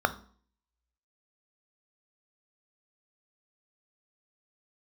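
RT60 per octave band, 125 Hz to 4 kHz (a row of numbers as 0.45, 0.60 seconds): 0.50, 0.55, 0.50, 0.50, 0.40, 0.45 seconds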